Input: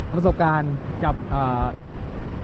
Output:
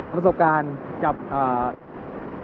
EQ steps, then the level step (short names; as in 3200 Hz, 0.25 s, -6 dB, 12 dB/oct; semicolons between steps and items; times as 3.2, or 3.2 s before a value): three-band isolator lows -20 dB, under 210 Hz, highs -17 dB, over 2200 Hz; +2.5 dB